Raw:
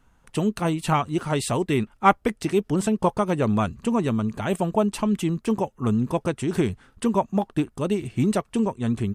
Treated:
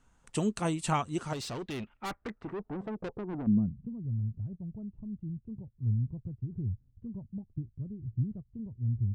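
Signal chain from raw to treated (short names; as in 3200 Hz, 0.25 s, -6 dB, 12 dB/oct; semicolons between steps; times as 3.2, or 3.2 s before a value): vocal rider within 4 dB 2 s; low-pass sweep 7900 Hz -> 110 Hz, 1.21–4.03; 1.33–3.47 tube stage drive 25 dB, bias 0.25; gain -8.5 dB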